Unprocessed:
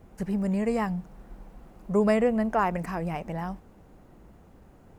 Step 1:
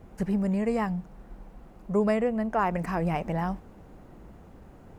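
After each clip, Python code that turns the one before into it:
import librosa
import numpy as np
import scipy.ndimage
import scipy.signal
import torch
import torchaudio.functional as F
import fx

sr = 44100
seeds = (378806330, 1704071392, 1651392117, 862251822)

y = fx.high_shelf(x, sr, hz=5200.0, db=-4.5)
y = fx.rider(y, sr, range_db=4, speed_s=0.5)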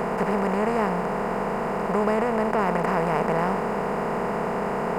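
y = fx.bin_compress(x, sr, power=0.2)
y = fx.low_shelf(y, sr, hz=200.0, db=-3.5)
y = y * librosa.db_to_amplitude(-3.0)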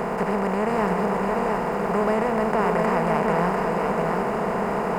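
y = fx.dmg_crackle(x, sr, seeds[0], per_s=140.0, level_db=-41.0)
y = y + 10.0 ** (-3.5 / 20.0) * np.pad(y, (int(696 * sr / 1000.0), 0))[:len(y)]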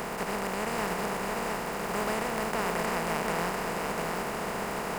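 y = fx.spec_flatten(x, sr, power=0.58)
y = y * librosa.db_to_amplitude(-8.5)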